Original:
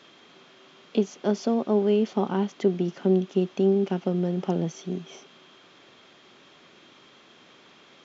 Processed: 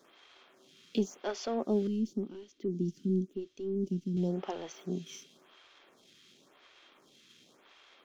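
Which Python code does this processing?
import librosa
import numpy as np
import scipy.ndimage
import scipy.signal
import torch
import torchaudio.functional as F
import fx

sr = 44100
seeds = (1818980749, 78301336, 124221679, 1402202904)

y = fx.high_shelf(x, sr, hz=3200.0, db=9.5)
y = fx.leveller(y, sr, passes=1)
y = fx.curve_eq(y, sr, hz=(330.0, 800.0, 5700.0), db=(0, -30, -7), at=(1.87, 4.17))
y = fx.stagger_phaser(y, sr, hz=0.93)
y = F.gain(torch.from_numpy(y), -7.5).numpy()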